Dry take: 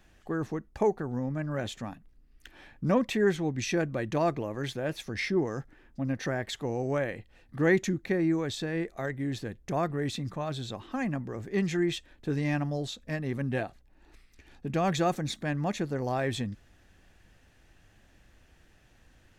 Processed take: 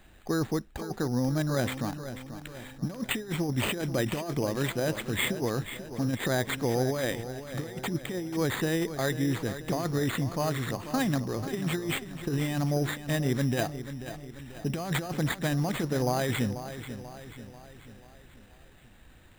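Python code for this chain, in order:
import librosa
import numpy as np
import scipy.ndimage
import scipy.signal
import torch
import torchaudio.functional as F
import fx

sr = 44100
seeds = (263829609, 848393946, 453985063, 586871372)

p1 = fx.over_compress(x, sr, threshold_db=-30.0, ratio=-0.5)
p2 = p1 + fx.echo_feedback(p1, sr, ms=488, feedback_pct=51, wet_db=-11.5, dry=0)
p3 = np.repeat(p2[::8], 8)[:len(p2)]
y = F.gain(torch.from_numpy(p3), 2.5).numpy()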